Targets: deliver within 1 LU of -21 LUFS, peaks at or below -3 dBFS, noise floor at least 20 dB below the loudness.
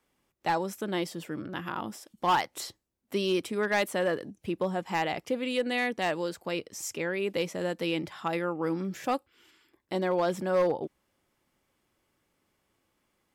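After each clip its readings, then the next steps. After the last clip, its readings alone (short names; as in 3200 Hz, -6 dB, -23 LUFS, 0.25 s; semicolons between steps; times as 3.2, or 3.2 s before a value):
clipped 0.5%; flat tops at -19.5 dBFS; loudness -31.0 LUFS; peak -19.5 dBFS; loudness target -21.0 LUFS
-> clip repair -19.5 dBFS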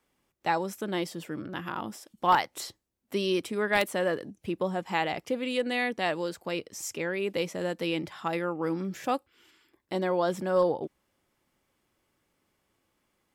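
clipped 0.0%; loudness -30.5 LUFS; peak -10.5 dBFS; loudness target -21.0 LUFS
-> gain +9.5 dB; limiter -3 dBFS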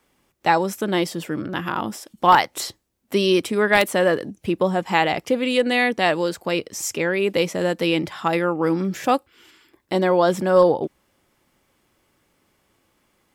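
loudness -21.0 LUFS; peak -3.0 dBFS; noise floor -67 dBFS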